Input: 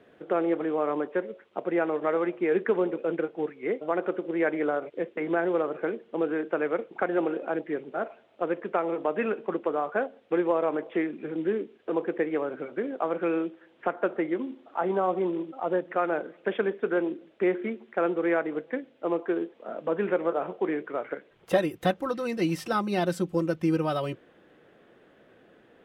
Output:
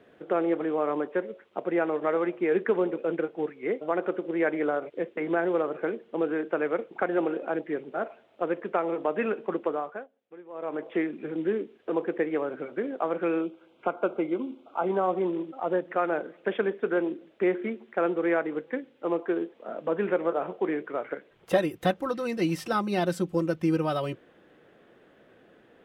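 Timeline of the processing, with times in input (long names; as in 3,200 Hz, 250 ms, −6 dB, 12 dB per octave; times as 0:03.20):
0:09.67–0:10.90: duck −21.5 dB, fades 0.40 s
0:13.41–0:14.87: Butterworth band-reject 1,800 Hz, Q 3
0:18.45–0:19.08: notch filter 660 Hz, Q 6.6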